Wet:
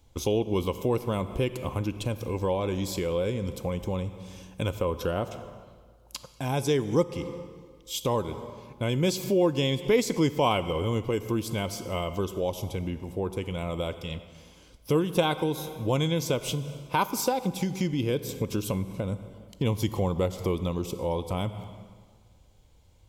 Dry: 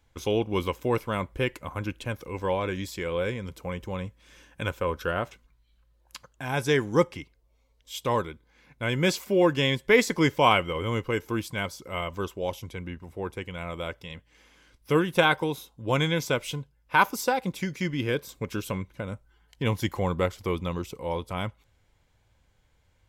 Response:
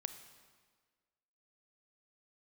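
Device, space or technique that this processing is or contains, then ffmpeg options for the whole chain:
ducked reverb: -filter_complex "[0:a]equalizer=f=1700:t=o:w=1:g=-14,asplit=3[s0][s1][s2];[1:a]atrim=start_sample=2205[s3];[s1][s3]afir=irnorm=-1:irlink=0[s4];[s2]apad=whole_len=1018165[s5];[s4][s5]sidechaincompress=threshold=0.0141:ratio=5:attack=48:release=176,volume=3.76[s6];[s0][s6]amix=inputs=2:normalize=0,volume=0.596"

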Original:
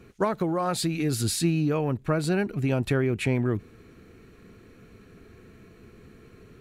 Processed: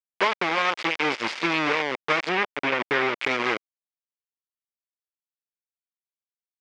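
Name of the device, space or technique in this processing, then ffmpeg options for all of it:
hand-held game console: -filter_complex "[0:a]acrusher=bits=3:mix=0:aa=0.000001,highpass=480,equalizer=f=680:t=q:w=4:g=-7,equalizer=f=2200:t=q:w=4:g=6,equalizer=f=4100:t=q:w=4:g=-6,lowpass=f=4400:w=0.5412,lowpass=f=4400:w=1.3066,asettb=1/sr,asplit=3[s0][s1][s2];[s0]atrim=end=2.294[s3];[s1]atrim=start=2.29:end=3.19,asetpts=PTS-STARTPTS,afade=t=in:d=0.004:c=qsin,afade=t=out:st=0.896:d=0.004:c=qsin,acrossover=split=3600[s4][s5];[s5]acompressor=threshold=0.00501:ratio=4:attack=1:release=60[s6];[s4][s6]amix=inputs=2:normalize=0[s7];[s2]atrim=start=3.186[s8];[s3][s7]acrossfade=d=0.004:c1=hsin:c2=qsin[s9];[s9][s8]acrossfade=d=0.004:c1=qsin:c2=hsin,volume=1.68"

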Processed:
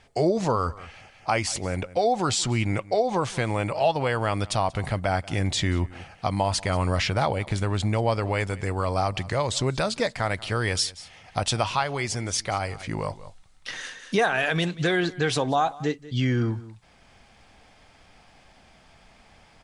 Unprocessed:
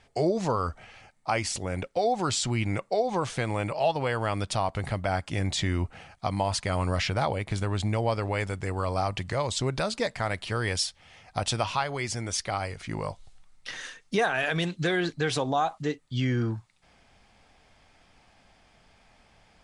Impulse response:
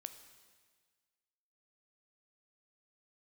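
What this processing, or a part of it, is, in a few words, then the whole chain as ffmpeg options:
ducked delay: -filter_complex "[0:a]asplit=3[s0][s1][s2];[s1]adelay=185,volume=0.794[s3];[s2]apad=whole_len=874269[s4];[s3][s4]sidechaincompress=threshold=0.00398:ratio=5:attack=16:release=390[s5];[s0][s5]amix=inputs=2:normalize=0,volume=1.41"

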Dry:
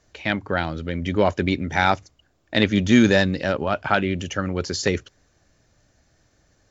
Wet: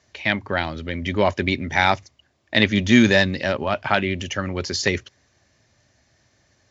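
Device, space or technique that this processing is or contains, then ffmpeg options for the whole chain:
car door speaker: -af "highpass=95,equalizer=f=170:t=q:w=4:g=-8,equalizer=f=300:t=q:w=4:g=-6,equalizer=f=470:t=q:w=4:g=-7,equalizer=f=750:t=q:w=4:g=-3,equalizer=f=1400:t=q:w=4:g=-6,equalizer=f=2000:t=q:w=4:g=3,lowpass=f=6700:w=0.5412,lowpass=f=6700:w=1.3066,volume=1.5"

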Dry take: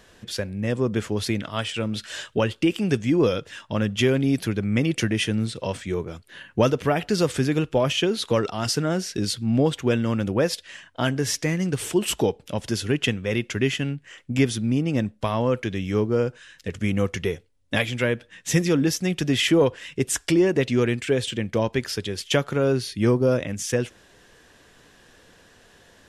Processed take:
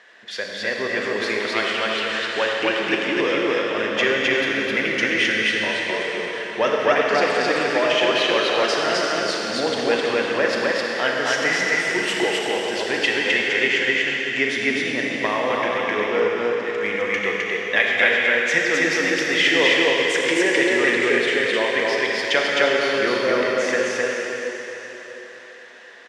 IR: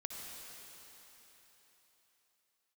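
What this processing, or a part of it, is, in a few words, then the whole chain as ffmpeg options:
station announcement: -filter_complex "[0:a]highpass=500,lowpass=4500,equalizer=f=1900:t=o:w=0.48:g=10,aecho=1:1:37.9|259.5:0.316|0.891[s0];[1:a]atrim=start_sample=2205[s1];[s0][s1]afir=irnorm=-1:irlink=0,volume=1.88"

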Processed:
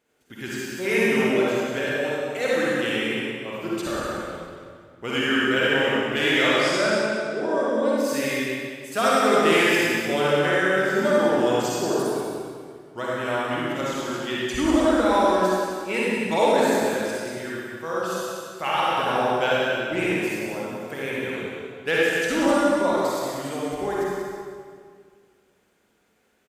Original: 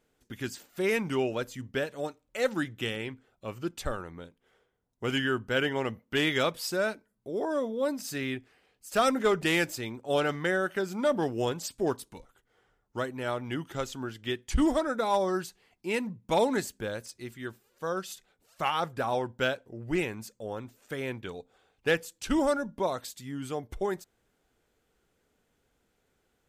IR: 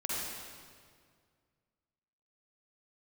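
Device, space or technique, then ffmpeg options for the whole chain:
PA in a hall: -filter_complex "[0:a]asettb=1/sr,asplit=3[s0][s1][s2];[s0]atrim=end=6.334[s3];[s1]atrim=start=6.33:end=7.97,asetpts=PTS-STARTPTS,afade=t=in:d=0.004:c=qsin,afade=t=out:st=1.636:d=0.004:c=qsin,lowpass=f=9000:w=0.5412,lowpass=f=9000:w=1.3066[s4];[s2]atrim=start=7.966[s5];[s3][s4]acrossfade=d=0.004:c1=hsin:c2=qsin[s6];[s6][s5]acrossfade=d=0.004:c1=qsin:c2=hsin,highpass=f=180:p=1,equalizer=f=2300:t=o:w=0.84:g=3,aecho=1:1:186:0.473[s7];[1:a]atrim=start_sample=2205[s8];[s7][s8]afir=irnorm=-1:irlink=0,volume=1.26"

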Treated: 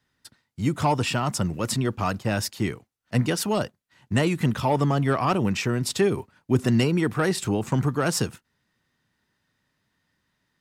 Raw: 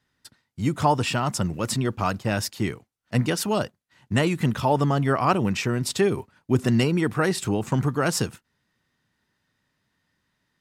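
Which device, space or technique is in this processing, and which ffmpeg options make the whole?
one-band saturation: -filter_complex "[0:a]acrossover=split=440|3900[s0][s1][s2];[s1]asoftclip=type=tanh:threshold=0.141[s3];[s0][s3][s2]amix=inputs=3:normalize=0"

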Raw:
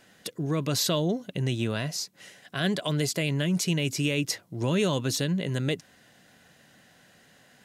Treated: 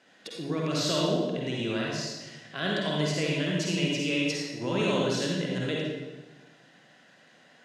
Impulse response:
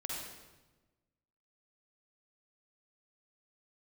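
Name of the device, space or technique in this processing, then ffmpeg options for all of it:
supermarket ceiling speaker: -filter_complex "[0:a]highpass=210,lowpass=5400[s0];[1:a]atrim=start_sample=2205[s1];[s0][s1]afir=irnorm=-1:irlink=0"

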